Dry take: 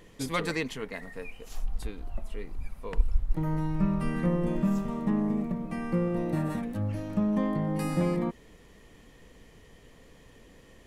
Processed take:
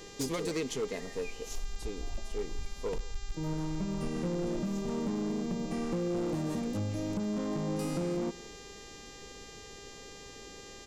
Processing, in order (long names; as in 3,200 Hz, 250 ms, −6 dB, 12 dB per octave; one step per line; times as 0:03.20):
downward compressor 20 to 1, threshold −30 dBFS, peak gain reduction 16.5 dB
graphic EQ with 15 bands 400 Hz +9 dB, 1,600 Hz −9 dB, 6,300 Hz +10 dB
hum with harmonics 400 Hz, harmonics 19, −52 dBFS −1 dB per octave
hard clipping −28 dBFS, distortion −17 dB
single-tap delay 170 ms −20.5 dB